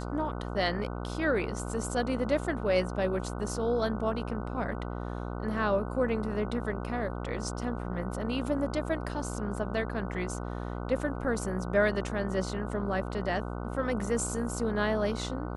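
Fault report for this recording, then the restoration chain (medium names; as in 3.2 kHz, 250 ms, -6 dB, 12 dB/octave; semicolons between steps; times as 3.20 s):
buzz 60 Hz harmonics 25 -36 dBFS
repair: de-hum 60 Hz, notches 25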